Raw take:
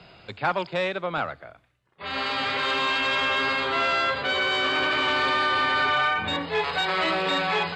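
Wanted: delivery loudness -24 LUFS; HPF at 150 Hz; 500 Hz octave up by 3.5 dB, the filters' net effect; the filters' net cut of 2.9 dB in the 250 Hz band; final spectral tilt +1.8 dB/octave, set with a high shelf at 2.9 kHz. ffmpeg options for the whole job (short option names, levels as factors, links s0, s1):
-af "highpass=150,equalizer=f=250:t=o:g=-6.5,equalizer=f=500:t=o:g=5.5,highshelf=f=2900:g=8,volume=0.668"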